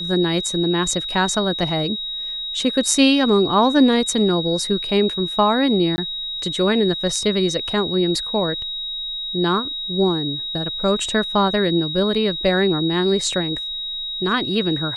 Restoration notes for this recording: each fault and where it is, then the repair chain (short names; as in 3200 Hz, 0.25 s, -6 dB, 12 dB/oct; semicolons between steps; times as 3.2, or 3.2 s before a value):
tone 3800 Hz -25 dBFS
5.96–5.98 gap 20 ms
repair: notch 3800 Hz, Q 30; interpolate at 5.96, 20 ms